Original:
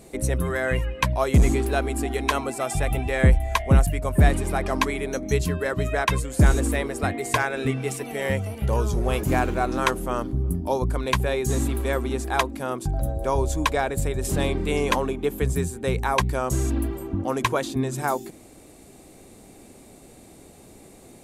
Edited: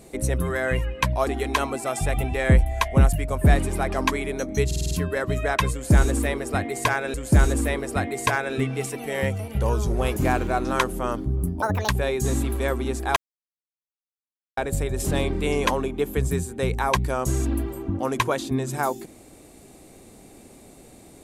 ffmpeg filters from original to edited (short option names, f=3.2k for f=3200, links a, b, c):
-filter_complex "[0:a]asplit=12[a][b][c][d][e][f][g][h][i][j][k][l];[a]atrim=end=1.272[m];[b]atrim=start=2.008:end=5.452[n];[c]atrim=start=5.398:end=5.452[o];[d]atrim=start=5.398:end=5.452[p];[e]atrim=start=5.398:end=5.452[q];[f]atrim=start=5.398:end=5.452[r];[g]atrim=start=5.398:end=7.632[s];[h]atrim=start=6.208:end=10.694[t];[i]atrim=start=10.69:end=11.14,asetpts=PTS-STARTPTS,asetrate=72765,aresample=44100,atrim=end_sample=12027,asetpts=PTS-STARTPTS[u];[j]atrim=start=11.136:end=12.41,asetpts=PTS-STARTPTS,afade=t=out:st=1.27:d=0.004:c=hsin[v];[k]atrim=start=12.41:end=13.82,asetpts=PTS-STARTPTS,volume=0[w];[l]atrim=start=13.82,asetpts=PTS-STARTPTS,afade=t=in:d=0.004:c=hsin[x];[m][n]acrossfade=d=0.004:c1=hsin:c2=hsin[y];[y][o]acrossfade=d=0.004:c1=hsin:c2=hsin[z];[z][p]acrossfade=d=0.004:c1=hsin:c2=hsin[aa];[aa][q]acrossfade=d=0.004:c1=hsin:c2=hsin[ab];[ab][r]acrossfade=d=0.004:c1=hsin:c2=hsin[ac];[ac][s]acrossfade=d=0.004:c1=hsin:c2=hsin[ad];[ad][t]acrossfade=d=0.004:c1=hsin:c2=hsin[ae];[ae][u]acrossfade=d=0.004:c1=hsin:c2=hsin[af];[v][w][x]concat=n=3:v=0:a=1[ag];[af][ag]acrossfade=d=0.004:c1=hsin:c2=hsin"